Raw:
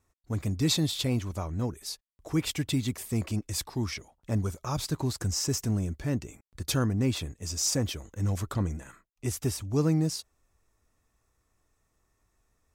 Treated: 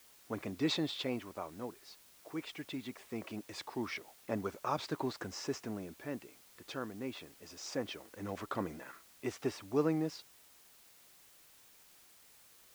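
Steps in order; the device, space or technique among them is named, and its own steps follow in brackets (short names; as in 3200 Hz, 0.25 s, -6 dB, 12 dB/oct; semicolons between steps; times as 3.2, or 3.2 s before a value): shortwave radio (BPF 340–2800 Hz; tremolo 0.22 Hz, depth 65%; white noise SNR 21 dB); gain +1 dB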